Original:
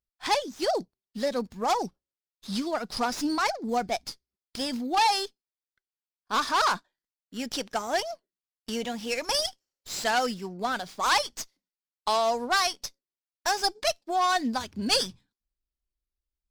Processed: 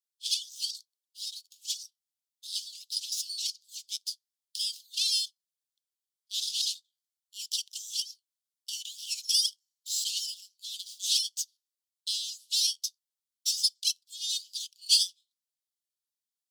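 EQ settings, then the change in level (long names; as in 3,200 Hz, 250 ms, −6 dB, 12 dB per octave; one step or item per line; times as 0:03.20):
Butterworth high-pass 3,000 Hz 72 dB per octave
parametric band 8,400 Hz +3 dB 1.2 octaves
+2.0 dB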